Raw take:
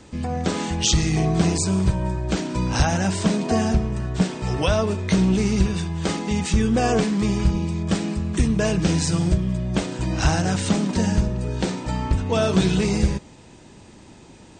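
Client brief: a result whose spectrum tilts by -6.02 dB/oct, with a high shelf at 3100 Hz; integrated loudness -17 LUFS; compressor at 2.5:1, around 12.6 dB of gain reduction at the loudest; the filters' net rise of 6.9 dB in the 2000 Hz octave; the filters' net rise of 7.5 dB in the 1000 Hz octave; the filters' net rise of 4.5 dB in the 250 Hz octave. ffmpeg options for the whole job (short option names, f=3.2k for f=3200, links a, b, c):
-af "equalizer=f=250:t=o:g=6,equalizer=f=1k:t=o:g=8.5,equalizer=f=2k:t=o:g=9,highshelf=f=3.1k:g=-8.5,acompressor=threshold=-31dB:ratio=2.5,volume=12.5dB"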